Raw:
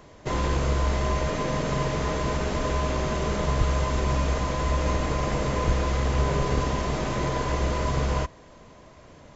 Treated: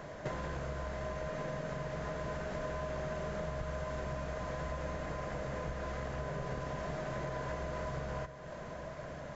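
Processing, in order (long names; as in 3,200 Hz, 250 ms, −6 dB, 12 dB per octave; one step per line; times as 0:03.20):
graphic EQ with 15 bands 160 Hz +8 dB, 630 Hz +10 dB, 1,600 Hz +10 dB
downward compressor 12 to 1, threshold −34 dBFS, peak gain reduction 20 dB
on a send: feedback delay with all-pass diffusion 931 ms, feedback 47%, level −13.5 dB
on the sum: level −2 dB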